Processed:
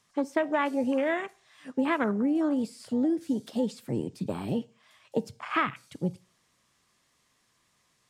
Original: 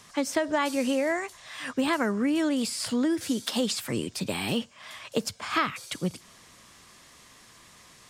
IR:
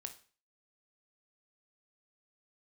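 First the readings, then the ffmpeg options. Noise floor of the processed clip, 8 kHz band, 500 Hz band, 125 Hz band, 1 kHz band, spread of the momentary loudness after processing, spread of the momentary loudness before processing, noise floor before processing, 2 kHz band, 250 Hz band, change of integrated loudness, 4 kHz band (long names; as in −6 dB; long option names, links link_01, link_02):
−71 dBFS, −17.0 dB, −0.5 dB, +0.5 dB, −0.5 dB, 8 LU, 8 LU, −54 dBFS, −2.5 dB, −0.5 dB, −1.0 dB, −13.0 dB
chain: -filter_complex "[0:a]afwtdn=0.0282,asplit=2[link_01][link_02];[link_02]equalizer=frequency=120:width=1.6:gain=12[link_03];[1:a]atrim=start_sample=2205,lowshelf=frequency=110:gain=-10.5[link_04];[link_03][link_04]afir=irnorm=-1:irlink=0,volume=-4.5dB[link_05];[link_01][link_05]amix=inputs=2:normalize=0,volume=-3dB"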